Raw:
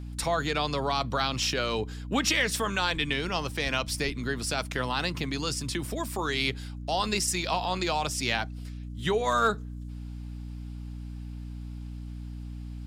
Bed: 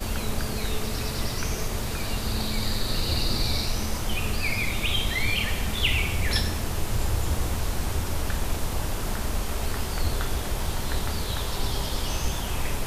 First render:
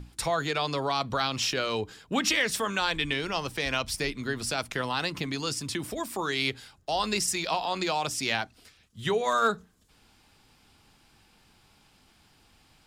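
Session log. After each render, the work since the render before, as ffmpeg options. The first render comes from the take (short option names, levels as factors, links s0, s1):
-af "bandreject=f=60:t=h:w=6,bandreject=f=120:t=h:w=6,bandreject=f=180:t=h:w=6,bandreject=f=240:t=h:w=6,bandreject=f=300:t=h:w=6"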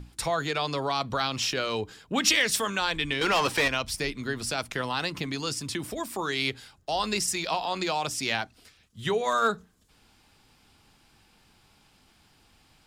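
-filter_complex "[0:a]asettb=1/sr,asplit=3[s0][s1][s2];[s0]atrim=end=2.124[s3];[s1]atrim=start=2.12:end=2.7,asetpts=PTS-STARTPTS,afade=t=in:d=0.004:c=qsin,afade=t=out:st=0.576:d=0.004:c=qsin,adynamicequalizer=threshold=0.0158:dfrequency=2300:dqfactor=0.7:tfrequency=2300:tqfactor=0.7:attack=5:release=100:ratio=0.375:range=2.5:mode=boostabove:tftype=highshelf[s4];[s2]atrim=start=2.696[s5];[s3][s4]acrossfade=d=0.004:c1=hsin:c2=qsin[s6];[s6][s5]acrossfade=d=0.004:c1=qsin:c2=hsin,asettb=1/sr,asplit=3[s7][s8][s9];[s7]atrim=end=3.214[s10];[s8]atrim=start=3.21:end=3.68,asetpts=PTS-STARTPTS,afade=t=in:d=0.004:c=qsin,afade=t=out:st=0.466:d=0.004:c=qsin,asplit=2[s11][s12];[s12]highpass=f=720:p=1,volume=14.1,asoftclip=type=tanh:threshold=0.188[s13];[s11][s13]amix=inputs=2:normalize=0,lowpass=f=3900:p=1,volume=0.501[s14];[s9]atrim=start=3.676[s15];[s10][s14]acrossfade=d=0.004:c1=hsin:c2=qsin[s16];[s16][s15]acrossfade=d=0.004:c1=qsin:c2=hsin"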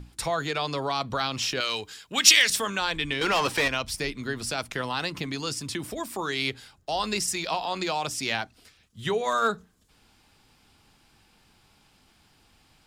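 -filter_complex "[0:a]asettb=1/sr,asplit=3[s0][s1][s2];[s0]atrim=end=1.604[s3];[s1]atrim=start=1.6:end=2.5,asetpts=PTS-STARTPTS,afade=t=in:d=0.004:c=qsin,afade=t=out:st=0.896:d=0.004:c=qsin,tiltshelf=f=1200:g=-8.5[s4];[s2]atrim=start=2.496[s5];[s3][s4]acrossfade=d=0.004:c1=hsin:c2=qsin[s6];[s6][s5]acrossfade=d=0.004:c1=qsin:c2=hsin"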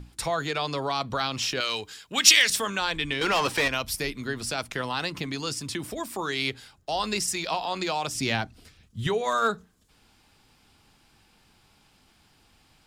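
-filter_complex "[0:a]asettb=1/sr,asplit=3[s0][s1][s2];[s0]atrim=end=3.734[s3];[s1]atrim=start=3.73:end=4.25,asetpts=PTS-STARTPTS,afade=t=in:d=0.004:c=qsin,afade=t=out:st=0.516:d=0.004:c=qsin,equalizer=f=12000:w=2.8:g=12.5[s4];[s2]atrim=start=4.246[s5];[s3][s4]acrossfade=d=0.004:c1=hsin:c2=qsin[s6];[s6][s5]acrossfade=d=0.004:c1=qsin:c2=hsin,asettb=1/sr,asplit=3[s7][s8][s9];[s7]atrim=end=8.154[s10];[s8]atrim=start=8.15:end=9.07,asetpts=PTS-STARTPTS,afade=t=in:d=0.004:c=qsin,afade=t=out:st=0.916:d=0.004:c=qsin,lowshelf=f=300:g=11.5[s11];[s9]atrim=start=9.066[s12];[s10][s11]acrossfade=d=0.004:c1=hsin:c2=qsin[s13];[s13][s12]acrossfade=d=0.004:c1=qsin:c2=hsin"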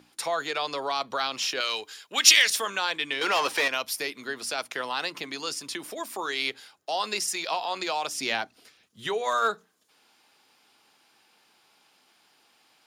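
-af "highpass=400,bandreject=f=7900:w=12"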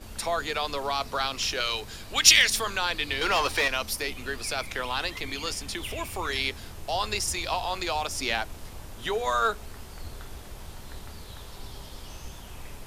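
-filter_complex "[1:a]volume=0.2[s0];[0:a][s0]amix=inputs=2:normalize=0"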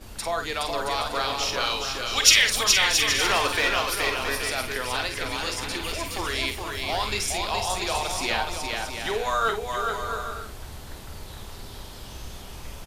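-filter_complex "[0:a]asplit=2[s0][s1];[s1]adelay=48,volume=0.398[s2];[s0][s2]amix=inputs=2:normalize=0,aecho=1:1:420|672|823.2|913.9|968.4:0.631|0.398|0.251|0.158|0.1"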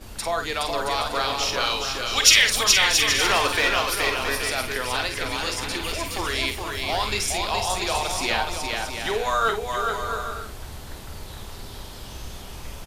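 -af "volume=1.26,alimiter=limit=0.891:level=0:latency=1"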